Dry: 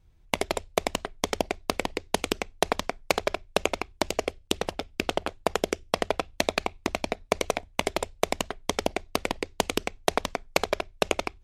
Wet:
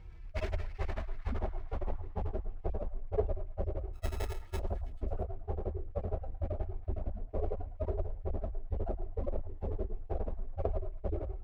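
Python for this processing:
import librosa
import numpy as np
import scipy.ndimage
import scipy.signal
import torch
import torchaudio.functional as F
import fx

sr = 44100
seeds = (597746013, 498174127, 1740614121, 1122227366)

y = fx.hpss_only(x, sr, part='harmonic')
y = fx.filter_sweep_lowpass(y, sr, from_hz=2400.0, to_hz=580.0, start_s=0.39, end_s=2.77, q=1.6)
y = fx.sample_hold(y, sr, seeds[0], rate_hz=1300.0, jitter_pct=0, at=(3.93, 4.58), fade=0.02)
y = fx.echo_stepped(y, sr, ms=109, hz=960.0, octaves=0.7, feedback_pct=70, wet_db=-10.5)
y = fx.running_max(y, sr, window=5)
y = y * librosa.db_to_amplitude(13.0)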